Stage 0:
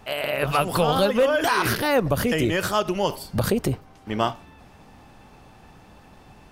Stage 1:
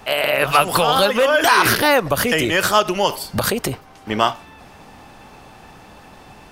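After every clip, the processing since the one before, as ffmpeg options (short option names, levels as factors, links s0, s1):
-filter_complex "[0:a]lowshelf=f=270:g=-7,acrossover=split=760|1500[s0][s1][s2];[s0]alimiter=limit=0.0794:level=0:latency=1:release=413[s3];[s3][s1][s2]amix=inputs=3:normalize=0,volume=2.82"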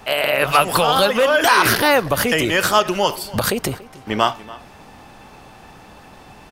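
-filter_complex "[0:a]asplit=2[s0][s1];[s1]adelay=285.7,volume=0.112,highshelf=f=4000:g=-6.43[s2];[s0][s2]amix=inputs=2:normalize=0"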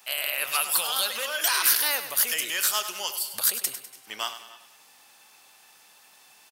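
-af "aderivative,aecho=1:1:100|200|300|400|500:0.266|0.122|0.0563|0.0259|0.0119"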